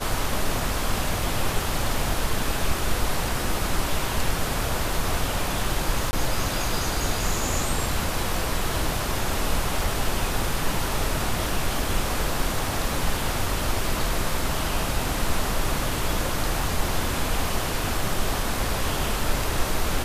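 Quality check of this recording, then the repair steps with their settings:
6.11–6.13 gap 20 ms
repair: interpolate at 6.11, 20 ms

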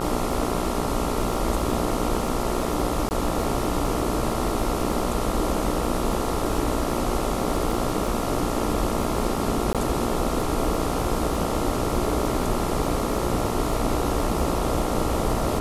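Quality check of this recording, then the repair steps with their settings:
buzz 60 Hz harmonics 23 -29 dBFS
crackle 45/s -31 dBFS
3.09–3.11 gap 19 ms
9.73–9.75 gap 17 ms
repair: de-click; de-hum 60 Hz, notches 23; interpolate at 3.09, 19 ms; interpolate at 9.73, 17 ms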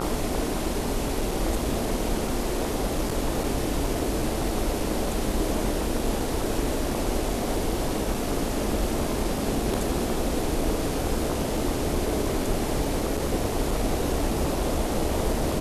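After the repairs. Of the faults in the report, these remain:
none

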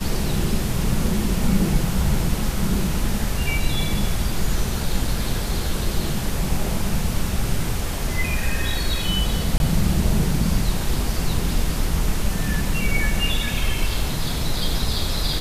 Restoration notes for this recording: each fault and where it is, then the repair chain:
9.58–9.6 gap 21 ms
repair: interpolate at 9.58, 21 ms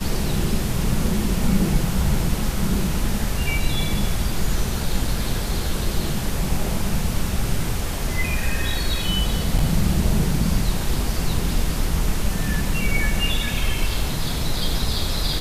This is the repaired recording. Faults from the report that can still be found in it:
none

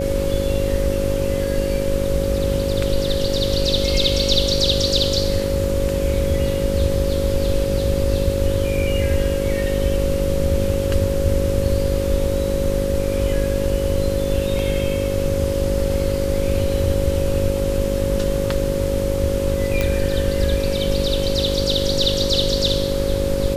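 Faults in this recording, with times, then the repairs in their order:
buzz 50 Hz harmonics 11 -25 dBFS
tone 550 Hz -24 dBFS
19.81 pop -6 dBFS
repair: de-click; de-hum 50 Hz, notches 11; notch 550 Hz, Q 30

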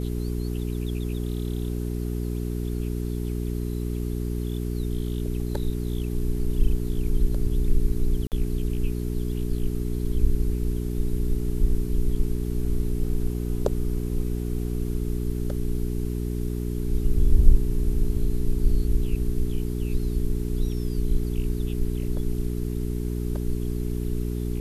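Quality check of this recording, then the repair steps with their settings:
hum 60 Hz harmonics 7 -28 dBFS
8.27–8.32 gap 48 ms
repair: de-hum 60 Hz, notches 7; interpolate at 8.27, 48 ms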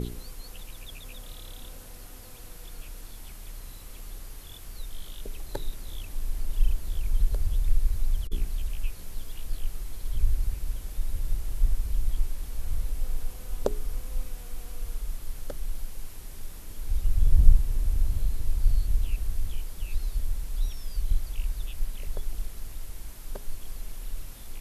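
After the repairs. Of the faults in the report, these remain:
none

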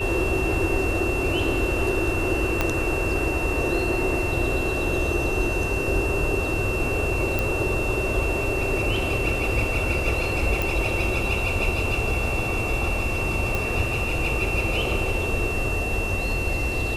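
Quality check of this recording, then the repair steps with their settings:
tone 2700 Hz -28 dBFS
2.61 pop -7 dBFS
7.39 pop
10.62 pop
13.55 pop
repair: de-click; notch 2700 Hz, Q 30

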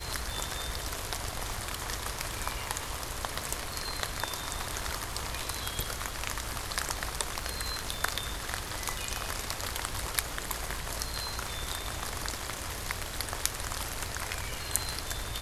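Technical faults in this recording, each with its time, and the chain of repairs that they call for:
crackle 56/s -38 dBFS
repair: de-click

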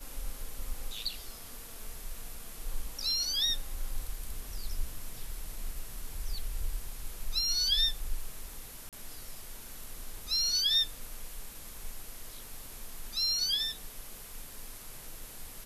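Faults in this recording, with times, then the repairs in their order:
8.89–8.93 gap 37 ms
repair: interpolate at 8.89, 37 ms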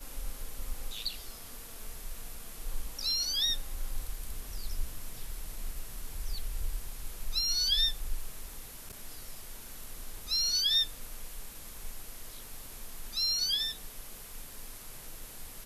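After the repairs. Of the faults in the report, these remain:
none

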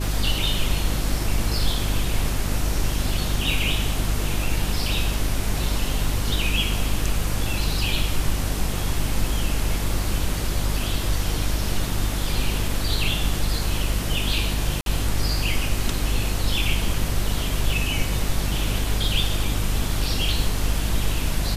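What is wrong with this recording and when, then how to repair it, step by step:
hum 50 Hz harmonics 7 -26 dBFS
14.81–14.86 gap 52 ms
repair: de-hum 50 Hz, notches 7; interpolate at 14.81, 52 ms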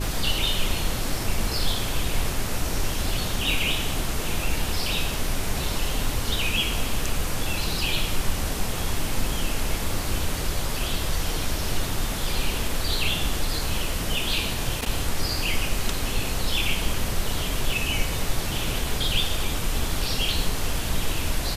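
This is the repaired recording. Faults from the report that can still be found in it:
none

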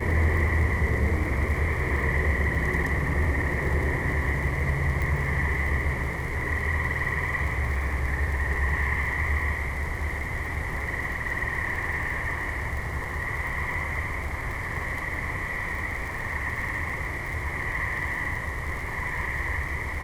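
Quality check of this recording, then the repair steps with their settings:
crackle 49/s -33 dBFS
5.02 pop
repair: de-click

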